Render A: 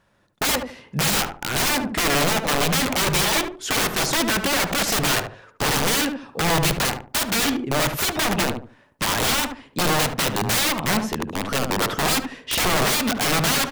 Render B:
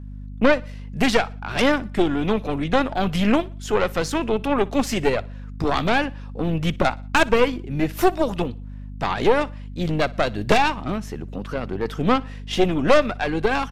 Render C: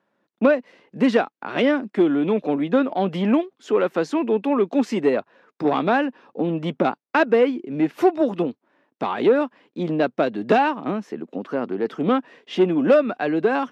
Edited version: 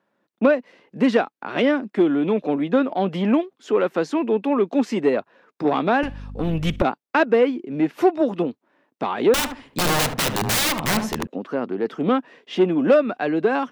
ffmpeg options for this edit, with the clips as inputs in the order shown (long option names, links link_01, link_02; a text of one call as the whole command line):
ffmpeg -i take0.wav -i take1.wav -i take2.wav -filter_complex "[2:a]asplit=3[link_01][link_02][link_03];[link_01]atrim=end=6.032[link_04];[1:a]atrim=start=6.028:end=6.822[link_05];[link_02]atrim=start=6.818:end=9.342[link_06];[0:a]atrim=start=9.338:end=11.272[link_07];[link_03]atrim=start=11.268[link_08];[link_04][link_05]acrossfade=duration=0.004:curve1=hsin:curve2=hsin[link_09];[link_09][link_06]acrossfade=duration=0.004:curve1=hsin:curve2=hsin[link_10];[link_10][link_07]acrossfade=duration=0.004:curve1=hsin:curve2=hsin[link_11];[link_11][link_08]acrossfade=duration=0.004:curve1=hsin:curve2=hsin" out.wav